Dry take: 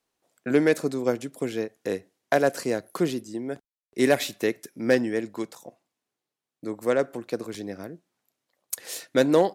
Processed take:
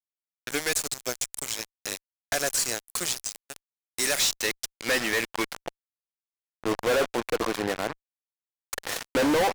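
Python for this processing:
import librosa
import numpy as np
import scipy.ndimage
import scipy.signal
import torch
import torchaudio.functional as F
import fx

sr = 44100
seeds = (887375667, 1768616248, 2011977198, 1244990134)

y = fx.filter_sweep_bandpass(x, sr, from_hz=7500.0, to_hz=1100.0, start_s=4.05, end_s=6.02, q=1.3)
y = fx.fuzz(y, sr, gain_db=54.0, gate_db=-46.0)
y = y * librosa.db_to_amplitude(-7.5)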